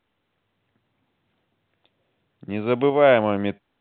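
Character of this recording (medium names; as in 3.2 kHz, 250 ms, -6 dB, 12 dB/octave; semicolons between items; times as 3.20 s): tremolo saw up 0.69 Hz, depth 30%; µ-law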